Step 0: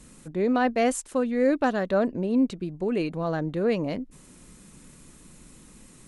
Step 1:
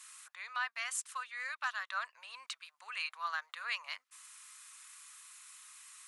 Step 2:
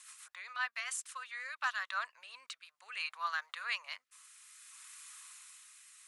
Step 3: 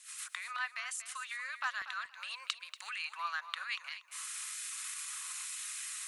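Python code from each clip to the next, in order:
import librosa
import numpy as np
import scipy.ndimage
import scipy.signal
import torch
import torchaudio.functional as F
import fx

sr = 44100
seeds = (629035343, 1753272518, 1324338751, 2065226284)

y1 = scipy.signal.sosfilt(scipy.signal.ellip(4, 1.0, 70, 1100.0, 'highpass', fs=sr, output='sos'), x)
y1 = fx.rider(y1, sr, range_db=4, speed_s=0.5)
y1 = F.gain(torch.from_numpy(y1), -1.0).numpy()
y2 = fx.rotary_switch(y1, sr, hz=7.5, then_hz=0.6, switch_at_s=0.76)
y2 = F.gain(torch.from_numpy(y2), 2.5).numpy()
y3 = fx.recorder_agc(y2, sr, target_db=-31.5, rise_db_per_s=74.0, max_gain_db=30)
y3 = fx.filter_lfo_highpass(y3, sr, shape='saw_down', hz=1.1, low_hz=440.0, high_hz=1800.0, q=0.76)
y3 = fx.echo_feedback(y3, sr, ms=237, feedback_pct=18, wet_db=-12)
y3 = F.gain(torch.from_numpy(y3), -1.5).numpy()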